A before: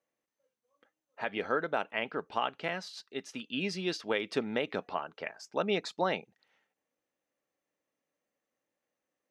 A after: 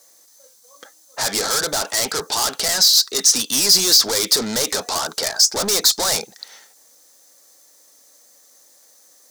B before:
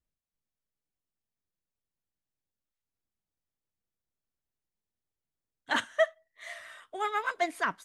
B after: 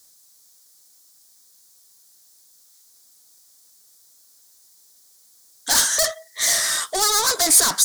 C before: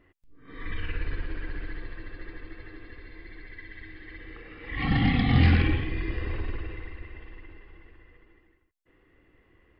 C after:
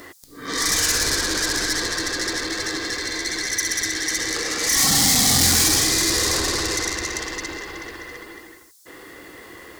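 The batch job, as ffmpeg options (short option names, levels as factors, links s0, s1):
-filter_complex "[0:a]asplit=2[s0][s1];[s1]highpass=f=720:p=1,volume=100,asoftclip=type=tanh:threshold=0.316[s2];[s0][s2]amix=inputs=2:normalize=0,lowpass=f=1900:p=1,volume=0.501,aexciter=amount=14.3:drive=7.2:freq=4200,volume=0.501"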